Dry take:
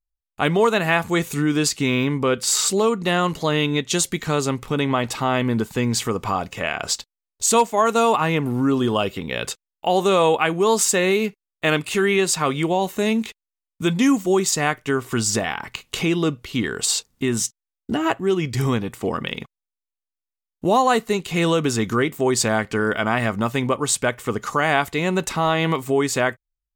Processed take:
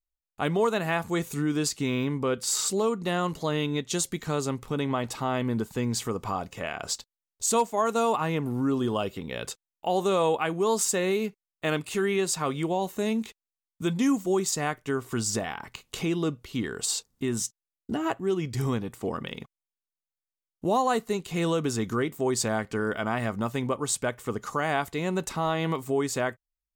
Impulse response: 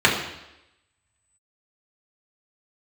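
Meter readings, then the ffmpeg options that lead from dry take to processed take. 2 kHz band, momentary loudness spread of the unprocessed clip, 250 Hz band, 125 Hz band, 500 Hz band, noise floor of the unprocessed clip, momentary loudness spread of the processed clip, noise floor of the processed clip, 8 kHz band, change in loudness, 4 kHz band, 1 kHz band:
-10.0 dB, 8 LU, -6.5 dB, -6.5 dB, -6.5 dB, under -85 dBFS, 8 LU, under -85 dBFS, -7.0 dB, -7.0 dB, -9.0 dB, -7.5 dB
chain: -af "equalizer=f=2.4k:w=0.9:g=-4.5,volume=-6.5dB"

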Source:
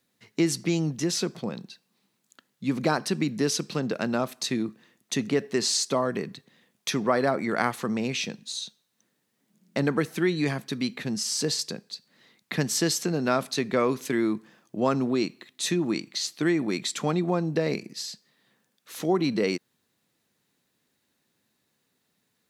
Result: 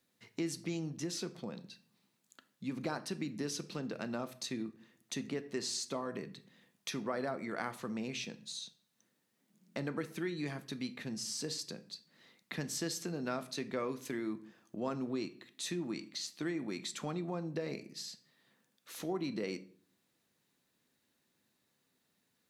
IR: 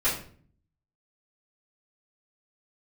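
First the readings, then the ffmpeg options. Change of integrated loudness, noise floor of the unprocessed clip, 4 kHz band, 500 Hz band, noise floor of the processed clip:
-12.5 dB, -75 dBFS, -11.5 dB, -13.0 dB, -79 dBFS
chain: -filter_complex "[0:a]acompressor=threshold=-46dB:ratio=1.5,asplit=2[a][b];[1:a]atrim=start_sample=2205[c];[b][c]afir=irnorm=-1:irlink=0,volume=-21dB[d];[a][d]amix=inputs=2:normalize=0,volume=-5dB"

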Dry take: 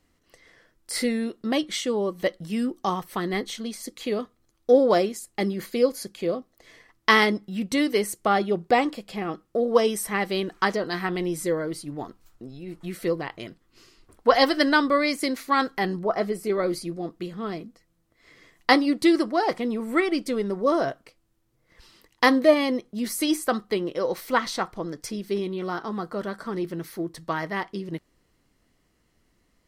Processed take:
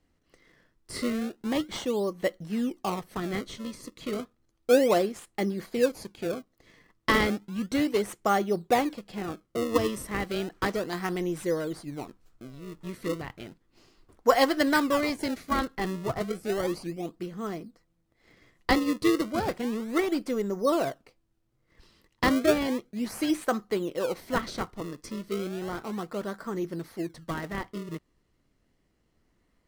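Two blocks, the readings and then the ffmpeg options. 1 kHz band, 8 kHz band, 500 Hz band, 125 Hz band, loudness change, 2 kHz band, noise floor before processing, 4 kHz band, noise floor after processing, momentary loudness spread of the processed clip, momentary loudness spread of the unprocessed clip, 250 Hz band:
-5.0 dB, -5.0 dB, -4.0 dB, -1.5 dB, -4.0 dB, -5.5 dB, -69 dBFS, -6.0 dB, -72 dBFS, 14 LU, 14 LU, -3.0 dB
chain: -filter_complex "[0:a]highshelf=f=9.8k:g=-8,asplit=2[a][b];[b]acrusher=samples=32:mix=1:aa=0.000001:lfo=1:lforange=51.2:lforate=0.33,volume=-3.5dB[c];[a][c]amix=inputs=2:normalize=0,volume=-7dB"

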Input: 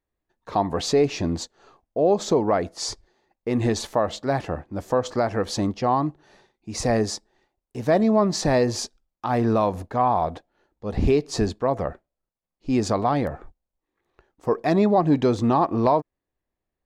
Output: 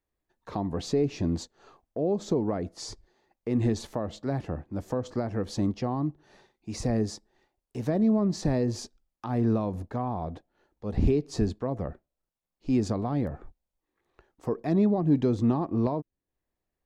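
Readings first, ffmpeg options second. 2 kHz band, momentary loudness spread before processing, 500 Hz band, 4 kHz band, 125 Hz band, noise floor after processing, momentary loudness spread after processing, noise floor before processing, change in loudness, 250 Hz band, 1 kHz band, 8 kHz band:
-12.5 dB, 12 LU, -8.5 dB, -10.5 dB, -1.5 dB, under -85 dBFS, 15 LU, under -85 dBFS, -5.5 dB, -2.5 dB, -13.5 dB, -10.5 dB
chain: -filter_complex "[0:a]acrossover=split=370[a][b];[b]acompressor=threshold=-43dB:ratio=2[c];[a][c]amix=inputs=2:normalize=0,volume=-1.5dB"

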